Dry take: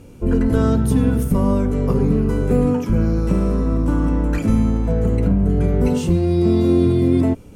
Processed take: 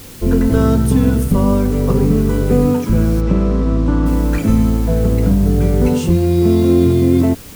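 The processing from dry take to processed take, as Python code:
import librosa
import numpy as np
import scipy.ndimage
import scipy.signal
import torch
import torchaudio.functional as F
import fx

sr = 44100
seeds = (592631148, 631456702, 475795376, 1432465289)

p1 = fx.quant_dither(x, sr, seeds[0], bits=6, dither='triangular')
p2 = x + F.gain(torch.from_numpy(p1), 0.0).numpy()
p3 = fx.air_absorb(p2, sr, metres=120.0, at=(3.2, 4.05), fade=0.02)
y = F.gain(torch.from_numpy(p3), -2.5).numpy()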